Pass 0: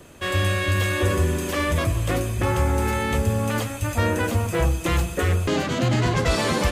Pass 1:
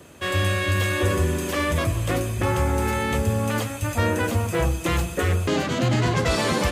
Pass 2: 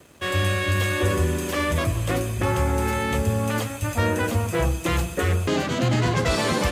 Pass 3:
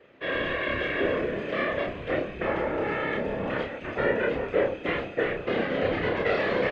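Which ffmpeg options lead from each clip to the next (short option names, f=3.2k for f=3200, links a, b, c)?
-af "highpass=63"
-af "aeval=exprs='sgn(val(0))*max(abs(val(0))-0.00237,0)':c=same"
-filter_complex "[0:a]highpass=210,equalizer=f=490:t=q:w=4:g=8,equalizer=f=960:t=q:w=4:g=-5,equalizer=f=1.9k:t=q:w=4:g=6,lowpass=f=3.2k:w=0.5412,lowpass=f=3.2k:w=1.3066,afftfilt=real='hypot(re,im)*cos(2*PI*random(0))':imag='hypot(re,im)*sin(2*PI*random(1))':win_size=512:overlap=0.75,asplit=2[a][b];[b]adelay=30,volume=-3dB[c];[a][c]amix=inputs=2:normalize=0"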